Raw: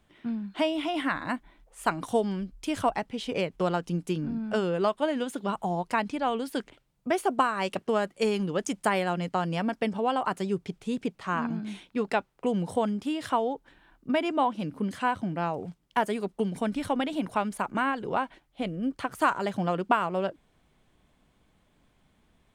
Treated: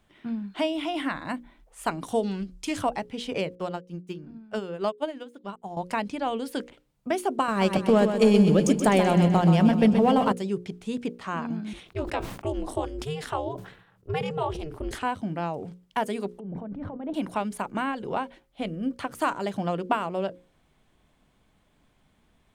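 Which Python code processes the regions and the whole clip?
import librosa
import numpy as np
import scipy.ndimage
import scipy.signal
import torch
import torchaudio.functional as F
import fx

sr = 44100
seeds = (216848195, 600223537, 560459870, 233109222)

y = fx.chain(x, sr, fx.peak_eq(hz=6500.0, db=5.5, octaves=1.9),
    fx.doppler_dist(depth_ms=0.11), at=(2.23, 2.77))
y = fx.chain(y, sr, fx.median_filter(points=3),
    fx.upward_expand(threshold_db=-39.0, expansion=2.5), at=(3.55, 5.77))
y = fx.chain(y, sr, fx.low_shelf(hz=300.0, db=11.0),
    fx.leveller(passes=1),
    fx.echo_feedback(ms=127, feedback_pct=56, wet_db=-7.5), at=(7.48, 10.32))
y = fx.chain(y, sr, fx.ring_mod(carrier_hz=150.0),
    fx.sustainer(db_per_s=86.0), at=(11.73, 15.03))
y = fx.chain(y, sr, fx.env_lowpass_down(base_hz=750.0, full_db=-27.5),
    fx.over_compress(threshold_db=-35.0, ratio=-1.0), at=(16.31, 17.14))
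y = fx.hum_notches(y, sr, base_hz=60, count=9)
y = fx.dynamic_eq(y, sr, hz=1400.0, q=1.1, threshold_db=-37.0, ratio=4.0, max_db=-5)
y = F.gain(torch.from_numpy(y), 1.0).numpy()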